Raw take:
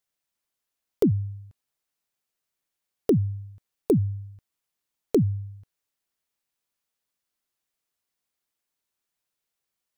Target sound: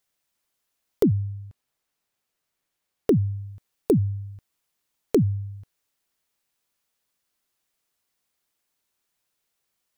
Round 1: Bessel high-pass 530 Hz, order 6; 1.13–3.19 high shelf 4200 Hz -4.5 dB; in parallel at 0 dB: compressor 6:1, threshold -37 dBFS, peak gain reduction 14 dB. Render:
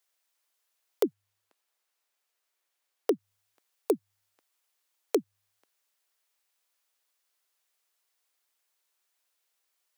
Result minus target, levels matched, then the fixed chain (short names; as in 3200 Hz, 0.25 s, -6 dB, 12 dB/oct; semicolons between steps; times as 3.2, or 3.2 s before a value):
500 Hz band +3.0 dB
1.13–3.19 high shelf 4200 Hz -4.5 dB; in parallel at 0 dB: compressor 6:1, threshold -37 dBFS, peak gain reduction 18.5 dB